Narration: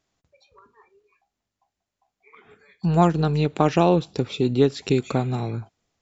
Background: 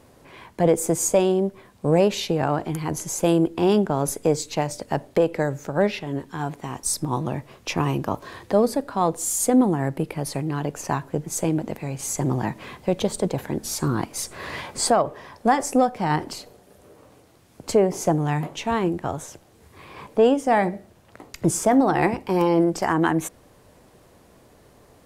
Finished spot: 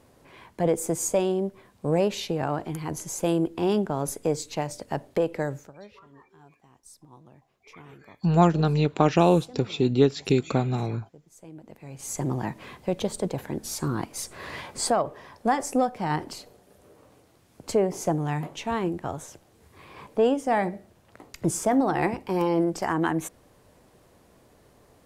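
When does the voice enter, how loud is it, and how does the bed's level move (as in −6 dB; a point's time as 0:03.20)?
5.40 s, −1.0 dB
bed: 0:05.58 −5 dB
0:05.78 −26 dB
0:11.36 −26 dB
0:12.16 −4.5 dB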